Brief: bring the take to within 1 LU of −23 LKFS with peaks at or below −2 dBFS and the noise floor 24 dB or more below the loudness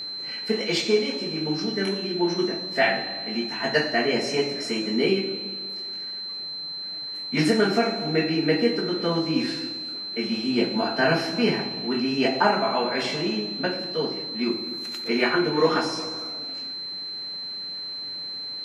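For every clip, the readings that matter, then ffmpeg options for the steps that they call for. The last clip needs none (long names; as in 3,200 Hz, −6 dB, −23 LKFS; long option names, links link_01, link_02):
interfering tone 4,100 Hz; level of the tone −31 dBFS; integrated loudness −25.0 LKFS; sample peak −6.5 dBFS; target loudness −23.0 LKFS
→ -af "bandreject=frequency=4100:width=30"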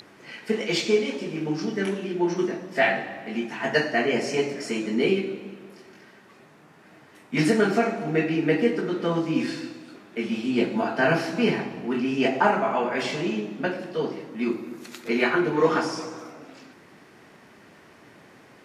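interfering tone none found; integrated loudness −25.0 LKFS; sample peak −6.5 dBFS; target loudness −23.0 LKFS
→ -af "volume=2dB"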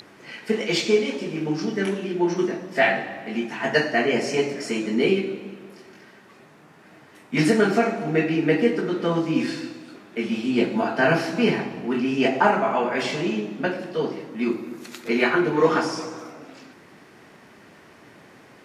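integrated loudness −23.0 LKFS; sample peak −4.5 dBFS; background noise floor −50 dBFS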